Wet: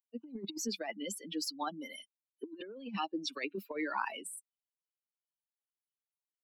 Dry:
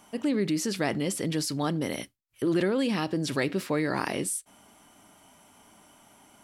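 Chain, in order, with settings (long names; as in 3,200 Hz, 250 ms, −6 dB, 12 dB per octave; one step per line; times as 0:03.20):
spectral dynamics exaggerated over time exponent 3
de-essing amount 80%
Butterworth high-pass 210 Hz 72 dB per octave
high-shelf EQ 4,200 Hz −3 dB
compressor whose output falls as the input rises −37 dBFS, ratio −0.5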